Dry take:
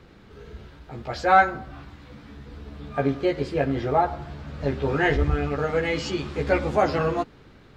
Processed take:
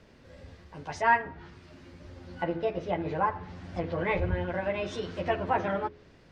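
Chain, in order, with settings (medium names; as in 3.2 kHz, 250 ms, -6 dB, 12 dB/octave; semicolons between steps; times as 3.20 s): tape speed +23%; low-pass that closes with the level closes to 2.5 kHz, closed at -20.5 dBFS; de-hum 83.8 Hz, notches 6; trim -6 dB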